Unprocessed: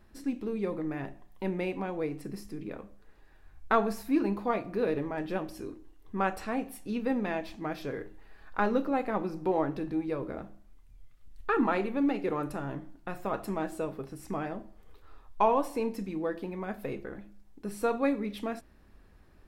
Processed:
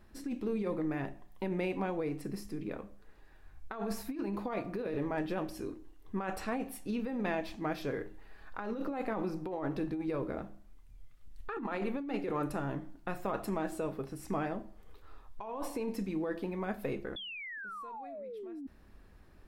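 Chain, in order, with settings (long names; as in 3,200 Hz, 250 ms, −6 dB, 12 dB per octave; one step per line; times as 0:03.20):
sound drawn into the spectrogram fall, 0:17.16–0:18.67, 260–3,500 Hz −21 dBFS
compressor whose output falls as the input rises −32 dBFS, ratio −1
level −4 dB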